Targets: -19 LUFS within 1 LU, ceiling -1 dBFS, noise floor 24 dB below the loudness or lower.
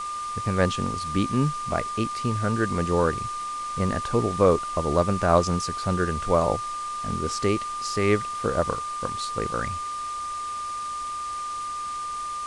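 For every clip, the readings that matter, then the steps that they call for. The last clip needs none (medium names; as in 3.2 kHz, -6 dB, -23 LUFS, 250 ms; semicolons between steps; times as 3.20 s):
steady tone 1.2 kHz; tone level -29 dBFS; noise floor -32 dBFS; noise floor target -50 dBFS; loudness -26.0 LUFS; peak level -5.5 dBFS; loudness target -19.0 LUFS
-> band-stop 1.2 kHz, Q 30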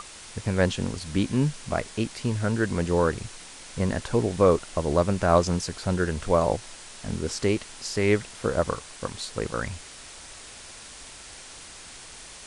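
steady tone not found; noise floor -44 dBFS; noise floor target -51 dBFS
-> noise reduction 7 dB, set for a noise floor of -44 dBFS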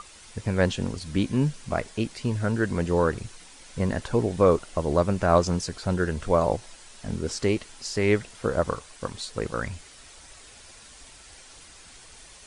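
noise floor -49 dBFS; noise floor target -51 dBFS
-> noise reduction 6 dB, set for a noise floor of -49 dBFS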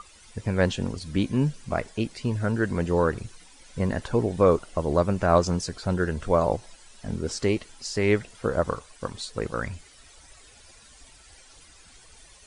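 noise floor -53 dBFS; loudness -26.5 LUFS; peak level -6.0 dBFS; loudness target -19.0 LUFS
-> trim +7.5 dB; peak limiter -1 dBFS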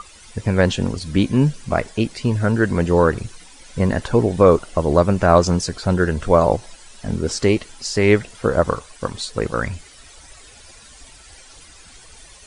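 loudness -19.0 LUFS; peak level -1.0 dBFS; noise floor -45 dBFS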